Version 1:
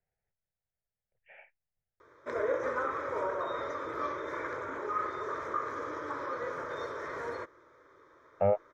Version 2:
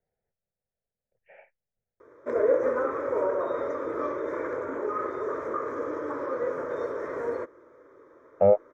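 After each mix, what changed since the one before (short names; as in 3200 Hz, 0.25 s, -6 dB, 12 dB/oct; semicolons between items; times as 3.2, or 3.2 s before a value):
master: add graphic EQ 250/500/4000 Hz +8/+8/-10 dB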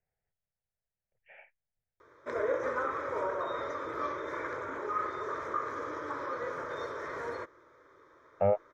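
master: add graphic EQ 250/500/4000 Hz -8/-8/+10 dB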